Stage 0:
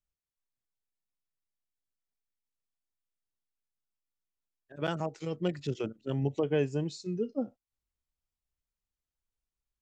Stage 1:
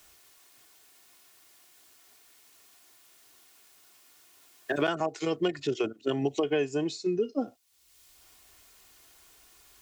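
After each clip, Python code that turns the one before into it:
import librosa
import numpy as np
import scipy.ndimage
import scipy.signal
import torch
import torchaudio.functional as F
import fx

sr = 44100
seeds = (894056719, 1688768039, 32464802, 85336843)

y = fx.highpass(x, sr, hz=390.0, slope=6)
y = y + 0.45 * np.pad(y, (int(2.8 * sr / 1000.0), 0))[:len(y)]
y = fx.band_squash(y, sr, depth_pct=100)
y = y * 10.0 ** (6.0 / 20.0)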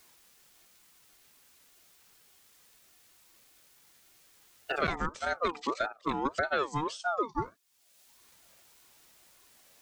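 y = fx.ring_lfo(x, sr, carrier_hz=830.0, swing_pct=30, hz=1.7)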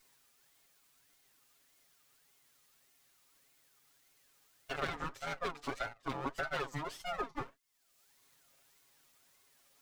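y = fx.lower_of_two(x, sr, delay_ms=7.3)
y = y * 10.0 ** (-6.0 / 20.0)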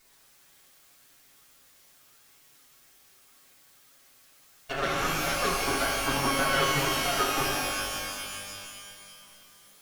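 y = fx.rev_shimmer(x, sr, seeds[0], rt60_s=2.4, semitones=12, shimmer_db=-2, drr_db=-1.5)
y = y * 10.0 ** (6.0 / 20.0)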